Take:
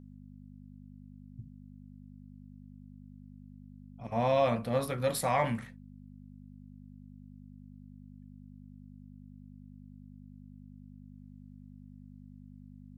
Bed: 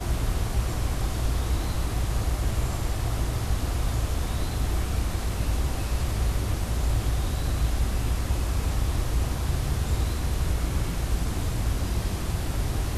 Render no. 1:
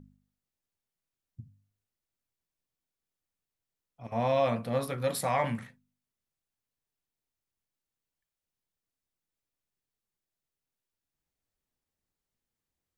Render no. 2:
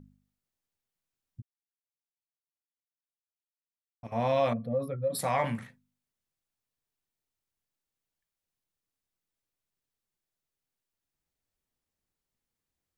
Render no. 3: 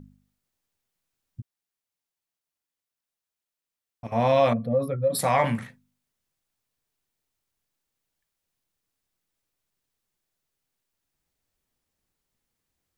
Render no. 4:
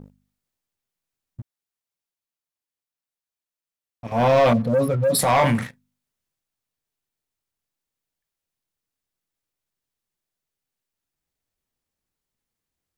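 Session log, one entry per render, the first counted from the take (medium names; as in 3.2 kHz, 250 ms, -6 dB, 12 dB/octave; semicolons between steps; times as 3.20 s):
de-hum 50 Hz, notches 5
1.42–4.03 s: mute; 4.53–5.19 s: spectral contrast enhancement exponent 1.9
trim +6.5 dB
waveshaping leveller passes 2; transient shaper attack -6 dB, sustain +2 dB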